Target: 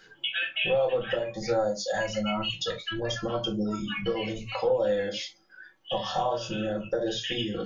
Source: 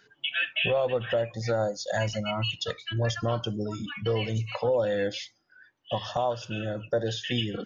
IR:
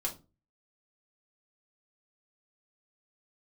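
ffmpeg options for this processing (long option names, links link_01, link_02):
-filter_complex "[0:a]acompressor=threshold=-39dB:ratio=2,asettb=1/sr,asplit=3[link_01][link_02][link_03];[link_01]atrim=end=6.004[link_04];[link_02]atrim=start=6:end=6.54,asetpts=PTS-STARTPTS,afade=type=in:duration=0.004:curve=qsin,afade=type=out:start_time=0.536:duration=0.004:curve=qsin,asplit=2[link_05][link_06];[link_06]adelay=26,volume=-2.5dB[link_07];[link_05][link_07]amix=inputs=2:normalize=0,atrim=end_sample=23814[link_08];[link_03]atrim=start=6.536[link_09];[link_04][link_08]acrossfade=duration=0.004:curve1=hsin:curve2=qsin[link_10];[link_10][link_09]acrossfade=duration=0.004:curve1=qsin:curve2=hsin[link_11];[1:a]atrim=start_sample=2205,atrim=end_sample=3528[link_12];[link_11][link_12]afir=irnorm=-1:irlink=0,volume=5dB"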